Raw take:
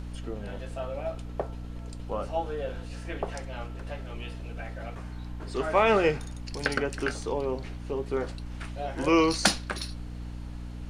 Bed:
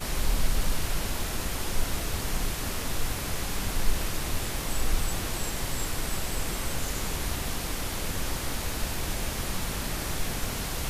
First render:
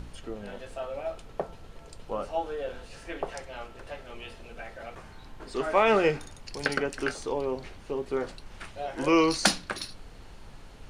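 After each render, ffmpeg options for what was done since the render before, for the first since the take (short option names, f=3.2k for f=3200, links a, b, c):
-af "bandreject=f=60:t=h:w=4,bandreject=f=120:t=h:w=4,bandreject=f=180:t=h:w=4,bandreject=f=240:t=h:w=4,bandreject=f=300:t=h:w=4"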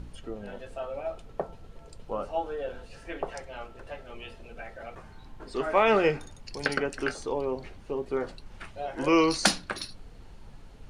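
-af "afftdn=nr=6:nf=-48"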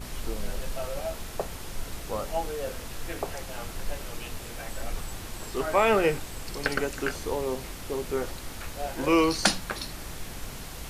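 -filter_complex "[1:a]volume=-8dB[a];[0:a][a]amix=inputs=2:normalize=0"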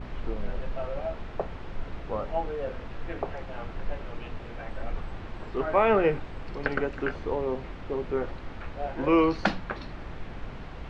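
-af "lowpass=3k,aemphasis=mode=reproduction:type=75fm"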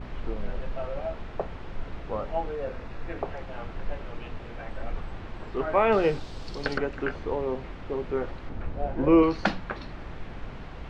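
-filter_complex "[0:a]asettb=1/sr,asplit=3[a][b][c];[a]atrim=end=2.554[d];[b]atrim=start=2.55:end=3.17,asetpts=PTS-STARTPTS,afade=t=in:d=0.004:c=qsin,afade=t=out:st=0.616:d=0.004:c=qsin,bandreject=f=3.1k:w=10[e];[c]atrim=start=3.166[f];[d][e]acrossfade=d=0.004:c1=hsin:c2=qsin[g];[g][f]acrossfade=d=0.004:c1=qsin:c2=hsin,asettb=1/sr,asplit=3[h][i][j];[h]atrim=end=5.924[k];[i]atrim=start=5.92:end=6.78,asetpts=PTS-STARTPTS,afade=t=in:d=0.004:c=qsin,afade=t=out:st=0.856:d=0.004:c=qsin,highshelf=f=3.2k:t=q:w=1.5:g=11[l];[j]atrim=start=6.776[m];[k][l]acrossfade=d=0.004:c1=hsin:c2=qsin[n];[n][m]acrossfade=d=0.004:c1=qsin:c2=hsin,asettb=1/sr,asplit=3[o][p][q];[o]atrim=end=8.494[r];[p]atrim=start=8.49:end=9.23,asetpts=PTS-STARTPTS,afade=t=in:d=0.004:c=qsin,afade=t=out:st=0.736:d=0.004:c=qsin,tiltshelf=f=760:g=6[s];[q]atrim=start=9.226[t];[r][s]acrossfade=d=0.004:c1=hsin:c2=qsin[u];[u][t]acrossfade=d=0.004:c1=qsin:c2=hsin"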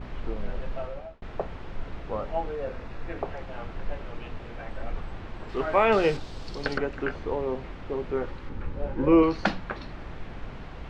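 -filter_complex "[0:a]asettb=1/sr,asplit=3[a][b][c];[a]atrim=end=5.494[d];[b]atrim=start=5.49:end=6.17,asetpts=PTS-STARTPTS,afade=t=in:d=0.004:c=qsin,afade=t=out:st=0.676:d=0.004:c=qsin,highshelf=f=2.3k:g=7[e];[c]atrim=start=6.166[f];[d][e]acrossfade=d=0.004:c1=hsin:c2=qsin[g];[g][f]acrossfade=d=0.004:c1=qsin:c2=hsin,asettb=1/sr,asplit=3[h][i][j];[h]atrim=end=8.254[k];[i]atrim=start=8.25:end=9.12,asetpts=PTS-STARTPTS,afade=t=in:d=0.004:c=qsin,afade=t=out:st=0.866:d=0.004:c=qsin,asuperstop=centerf=680:order=4:qfactor=4.5[l];[j]atrim=start=9.116[m];[k][l]acrossfade=d=0.004:c1=hsin:c2=qsin[n];[n][m]acrossfade=d=0.004:c1=qsin:c2=hsin,asplit=2[o][p];[o]atrim=end=1.22,asetpts=PTS-STARTPTS,afade=t=out:st=0.78:d=0.44[q];[p]atrim=start=1.22,asetpts=PTS-STARTPTS,afade=t=in:d=0.004:c=hsin[r];[q][r]concat=n=2:v=0:a=1"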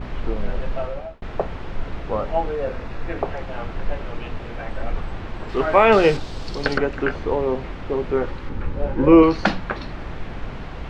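-af "volume=7.5dB,alimiter=limit=-2dB:level=0:latency=1"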